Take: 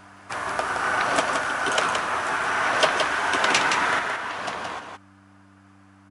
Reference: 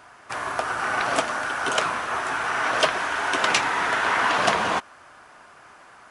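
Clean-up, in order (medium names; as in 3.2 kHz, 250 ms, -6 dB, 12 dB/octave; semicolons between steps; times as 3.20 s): de-hum 97.5 Hz, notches 3; inverse comb 170 ms -5 dB; trim 0 dB, from 3.99 s +10.5 dB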